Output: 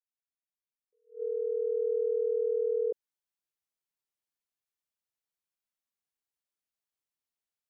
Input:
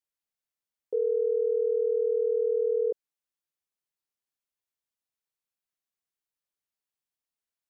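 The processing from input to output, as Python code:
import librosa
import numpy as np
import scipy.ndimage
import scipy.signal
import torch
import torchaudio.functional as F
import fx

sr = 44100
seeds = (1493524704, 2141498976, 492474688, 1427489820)

y = fx.fade_in_head(x, sr, length_s=1.93)
y = fx.attack_slew(y, sr, db_per_s=220.0)
y = F.gain(torch.from_numpy(y), -3.0).numpy()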